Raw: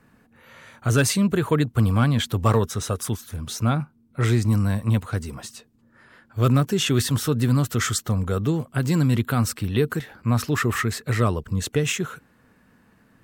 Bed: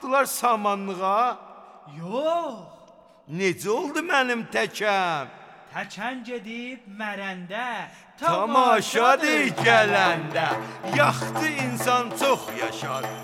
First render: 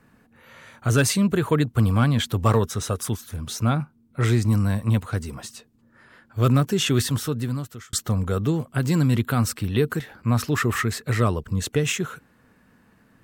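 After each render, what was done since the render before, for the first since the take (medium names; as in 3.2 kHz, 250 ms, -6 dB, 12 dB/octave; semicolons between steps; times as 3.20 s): 6.97–7.93 s: fade out linear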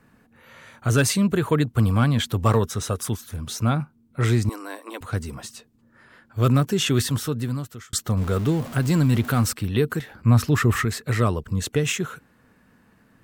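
4.49–5.01 s: rippled Chebyshev high-pass 270 Hz, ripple 3 dB; 8.17–9.53 s: jump at every zero crossing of -31.5 dBFS; 10.14–10.85 s: bass shelf 170 Hz +8.5 dB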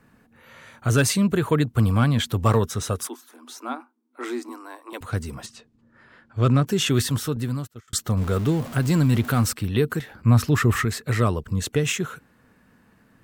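3.07–4.93 s: rippled Chebyshev high-pass 240 Hz, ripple 9 dB; 5.46–6.66 s: distance through air 69 m; 7.36–7.88 s: gate -38 dBFS, range -18 dB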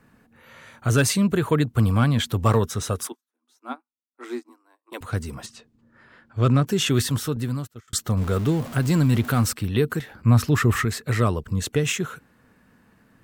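3.12–4.92 s: upward expansion 2.5:1, over -51 dBFS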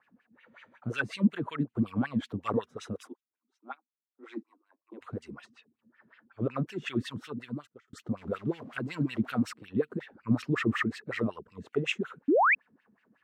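wah-wah 5.4 Hz 200–2900 Hz, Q 3.6; 12.28–12.55 s: painted sound rise 250–2700 Hz -22 dBFS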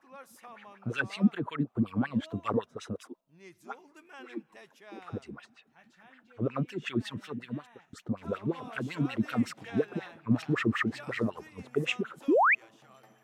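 add bed -28.5 dB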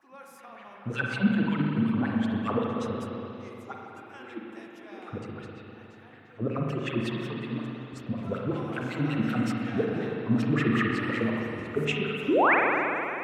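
spring tank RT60 3.3 s, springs 40/53 ms, chirp 25 ms, DRR -1.5 dB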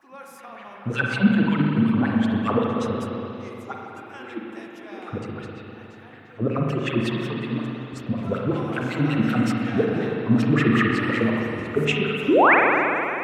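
trim +6 dB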